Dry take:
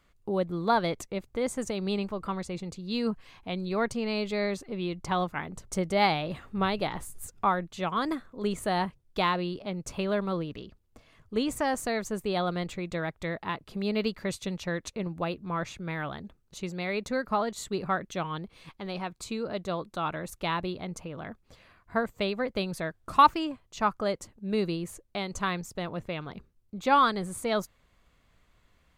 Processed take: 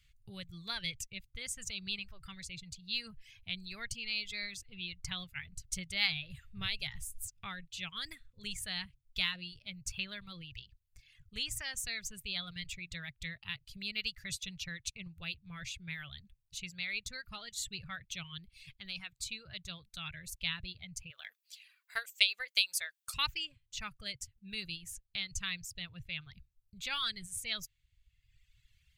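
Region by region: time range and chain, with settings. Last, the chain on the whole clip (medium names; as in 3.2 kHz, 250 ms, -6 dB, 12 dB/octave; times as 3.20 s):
21.10–23.14 s: high-pass 460 Hz 24 dB/octave + treble shelf 4.5 kHz +10 dB + transient shaper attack +7 dB, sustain +2 dB
whole clip: reverb removal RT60 1.2 s; FFT filter 130 Hz 0 dB, 260 Hz -29 dB, 1 kHz -27 dB, 1.7 kHz -8 dB, 2.7 kHz +2 dB, 11 kHz -1 dB; trim +1 dB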